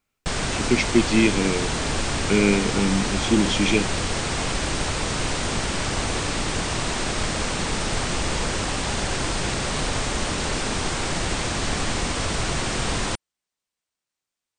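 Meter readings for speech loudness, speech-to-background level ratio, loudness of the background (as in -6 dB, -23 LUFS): -22.0 LUFS, 3.0 dB, -25.0 LUFS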